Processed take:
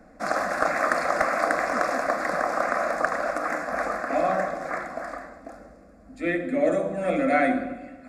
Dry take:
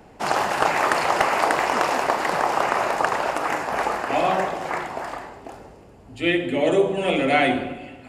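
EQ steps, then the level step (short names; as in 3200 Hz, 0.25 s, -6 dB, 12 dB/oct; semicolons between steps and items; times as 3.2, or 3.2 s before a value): high shelf 8200 Hz -11 dB; fixed phaser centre 600 Hz, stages 8; 0.0 dB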